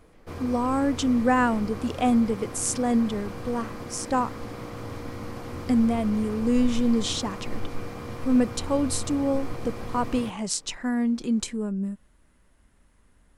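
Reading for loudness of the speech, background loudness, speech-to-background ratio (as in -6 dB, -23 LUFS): -26.0 LUFS, -37.0 LUFS, 11.0 dB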